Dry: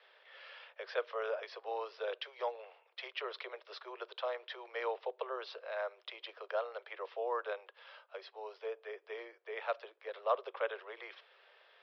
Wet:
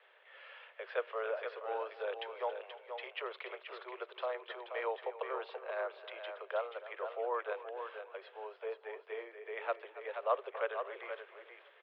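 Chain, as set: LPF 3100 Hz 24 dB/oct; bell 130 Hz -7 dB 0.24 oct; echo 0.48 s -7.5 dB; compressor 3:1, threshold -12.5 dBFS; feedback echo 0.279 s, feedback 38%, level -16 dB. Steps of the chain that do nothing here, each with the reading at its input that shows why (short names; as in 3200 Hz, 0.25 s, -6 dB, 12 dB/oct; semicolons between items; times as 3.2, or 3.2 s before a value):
bell 130 Hz: input band starts at 320 Hz; compressor, threshold -12.5 dBFS: input peak -20.0 dBFS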